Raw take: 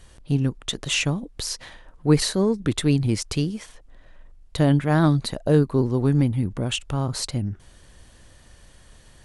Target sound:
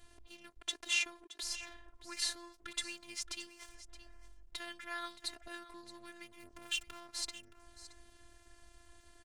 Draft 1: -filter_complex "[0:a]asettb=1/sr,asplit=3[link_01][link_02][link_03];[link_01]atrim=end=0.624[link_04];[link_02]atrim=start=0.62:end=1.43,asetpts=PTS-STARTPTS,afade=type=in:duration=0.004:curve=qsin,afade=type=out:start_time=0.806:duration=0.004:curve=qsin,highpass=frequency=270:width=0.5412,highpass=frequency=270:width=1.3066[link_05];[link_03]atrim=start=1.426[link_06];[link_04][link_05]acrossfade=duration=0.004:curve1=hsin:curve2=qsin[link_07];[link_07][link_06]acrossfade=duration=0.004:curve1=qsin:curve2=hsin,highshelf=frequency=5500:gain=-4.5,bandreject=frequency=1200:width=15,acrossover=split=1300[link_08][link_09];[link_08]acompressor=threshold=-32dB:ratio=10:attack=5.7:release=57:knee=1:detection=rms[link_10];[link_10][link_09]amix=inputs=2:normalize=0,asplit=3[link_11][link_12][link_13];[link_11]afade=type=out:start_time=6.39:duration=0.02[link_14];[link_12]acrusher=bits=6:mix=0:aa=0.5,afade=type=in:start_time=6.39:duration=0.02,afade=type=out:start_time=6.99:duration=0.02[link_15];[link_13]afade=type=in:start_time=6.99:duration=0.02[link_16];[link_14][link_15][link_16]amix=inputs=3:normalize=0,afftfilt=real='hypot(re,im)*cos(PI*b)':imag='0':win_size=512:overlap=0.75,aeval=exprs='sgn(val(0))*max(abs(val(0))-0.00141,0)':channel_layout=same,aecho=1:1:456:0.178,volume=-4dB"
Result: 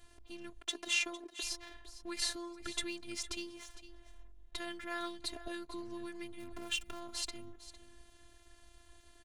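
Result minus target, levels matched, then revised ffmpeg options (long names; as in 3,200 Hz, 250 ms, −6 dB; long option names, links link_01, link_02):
downward compressor: peak gain reduction −10 dB; echo 165 ms early
-filter_complex "[0:a]asettb=1/sr,asplit=3[link_01][link_02][link_03];[link_01]atrim=end=0.624[link_04];[link_02]atrim=start=0.62:end=1.43,asetpts=PTS-STARTPTS,afade=type=in:duration=0.004:curve=qsin,afade=type=out:start_time=0.806:duration=0.004:curve=qsin,highpass=frequency=270:width=0.5412,highpass=frequency=270:width=1.3066[link_05];[link_03]atrim=start=1.426[link_06];[link_04][link_05]acrossfade=duration=0.004:curve1=hsin:curve2=qsin[link_07];[link_07][link_06]acrossfade=duration=0.004:curve1=qsin:curve2=hsin,highshelf=frequency=5500:gain=-4.5,bandreject=frequency=1200:width=15,acrossover=split=1300[link_08][link_09];[link_08]acompressor=threshold=-43dB:ratio=10:attack=5.7:release=57:knee=1:detection=rms[link_10];[link_10][link_09]amix=inputs=2:normalize=0,asplit=3[link_11][link_12][link_13];[link_11]afade=type=out:start_time=6.39:duration=0.02[link_14];[link_12]acrusher=bits=6:mix=0:aa=0.5,afade=type=in:start_time=6.39:duration=0.02,afade=type=out:start_time=6.99:duration=0.02[link_15];[link_13]afade=type=in:start_time=6.99:duration=0.02[link_16];[link_14][link_15][link_16]amix=inputs=3:normalize=0,afftfilt=real='hypot(re,im)*cos(PI*b)':imag='0':win_size=512:overlap=0.75,aeval=exprs='sgn(val(0))*max(abs(val(0))-0.00141,0)':channel_layout=same,aecho=1:1:621:0.178,volume=-4dB"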